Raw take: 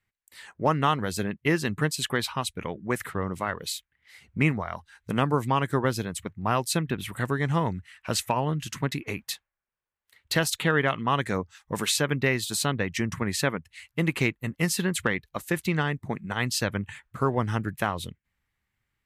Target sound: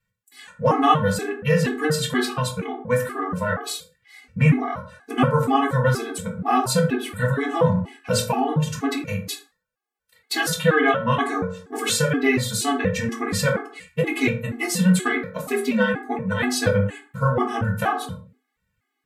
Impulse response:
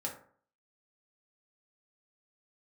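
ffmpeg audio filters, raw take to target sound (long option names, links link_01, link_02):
-filter_complex "[0:a]asettb=1/sr,asplit=3[link_01][link_02][link_03];[link_01]atrim=end=15.174[link_04];[link_02]atrim=start=15.17:end=15.94,asetpts=PTS-STARTPTS,afade=type=in:duration=0.004:curve=qsin,afade=type=out:start_time=0.766:duration=0.004:curve=qsin,afreqshift=55[link_05];[link_03]atrim=start=15.936[link_06];[link_04][link_05]acrossfade=duration=0.004:curve1=hsin:curve2=qsin[link_07];[link_07][link_06]acrossfade=duration=0.004:curve1=qsin:curve2=hsin[link_08];[1:a]atrim=start_sample=2205,afade=type=out:start_time=0.33:duration=0.01,atrim=end_sample=14994,asetrate=40131,aresample=44100[link_09];[link_08][link_09]afir=irnorm=-1:irlink=0,afftfilt=real='re*gt(sin(2*PI*2.1*pts/sr)*(1-2*mod(floor(b*sr/1024/220),2)),0)':imag='im*gt(sin(2*PI*2.1*pts/sr)*(1-2*mod(floor(b*sr/1024/220),2)),0)':win_size=1024:overlap=0.75,volume=6.5dB"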